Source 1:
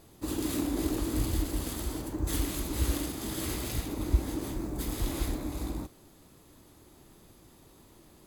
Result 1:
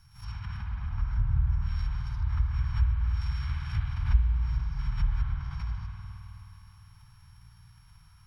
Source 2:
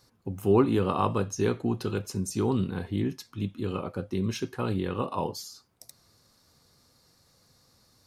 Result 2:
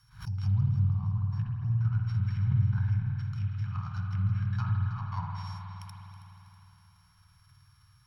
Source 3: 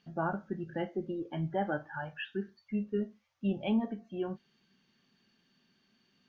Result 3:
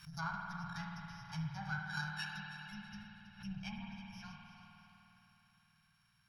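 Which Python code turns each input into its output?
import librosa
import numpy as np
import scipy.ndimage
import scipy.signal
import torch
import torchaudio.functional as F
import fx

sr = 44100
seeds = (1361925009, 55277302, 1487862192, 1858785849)

p1 = np.r_[np.sort(x[:len(x) // 8 * 8].reshape(-1, 8), axis=1).ravel(), x[len(x) // 8 * 8:]]
p2 = fx.env_lowpass_down(p1, sr, base_hz=310.0, full_db=-22.5)
p3 = scipy.signal.sosfilt(scipy.signal.ellip(3, 1.0, 60, [140.0, 1100.0], 'bandstop', fs=sr, output='sos'), p2)
p4 = fx.high_shelf(p3, sr, hz=2500.0, db=-7.5)
p5 = p4 + 0.42 * np.pad(p4, (int(1.3 * sr / 1000.0), 0))[:len(p4)]
p6 = p5 + fx.echo_feedback(p5, sr, ms=323, feedback_pct=39, wet_db=-14, dry=0)
p7 = fx.rev_spring(p6, sr, rt60_s=3.5, pass_ms=(52,), chirp_ms=30, drr_db=0.0)
p8 = fx.pre_swell(p7, sr, db_per_s=150.0)
y = F.gain(torch.from_numpy(p8), 1.0).numpy()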